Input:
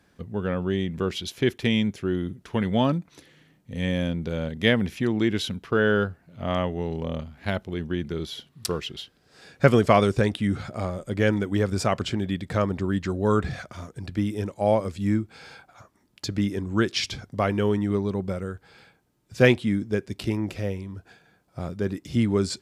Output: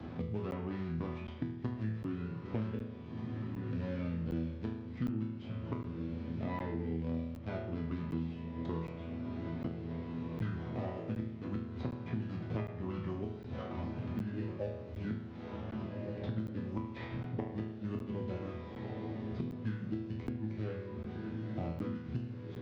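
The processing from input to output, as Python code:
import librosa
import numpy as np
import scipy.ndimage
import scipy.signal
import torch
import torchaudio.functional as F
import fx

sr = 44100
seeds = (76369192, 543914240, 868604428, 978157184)

y = scipy.signal.medfilt(x, 25)
y = scipy.signal.sosfilt(scipy.signal.butter(4, 6100.0, 'lowpass', fs=sr, output='sos'), y)
y = fx.low_shelf(y, sr, hz=160.0, db=7.0)
y = fx.formant_shift(y, sr, semitones=-4)
y = fx.gate_flip(y, sr, shuts_db=-13.0, range_db=-33)
y = fx.highpass(y, sr, hz=110.0, slope=6)
y = fx.peak_eq(y, sr, hz=280.0, db=3.5, octaves=0.28)
y = fx.hum_notches(y, sr, base_hz=50, count=4)
y = fx.resonator_bank(y, sr, root=40, chord='sus4', decay_s=0.68)
y = fx.echo_diffused(y, sr, ms=1702, feedback_pct=48, wet_db=-13.0)
y = fx.buffer_crackle(y, sr, first_s=0.51, period_s=0.76, block=512, kind='zero')
y = fx.band_squash(y, sr, depth_pct=100)
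y = y * 10.0 ** (8.5 / 20.0)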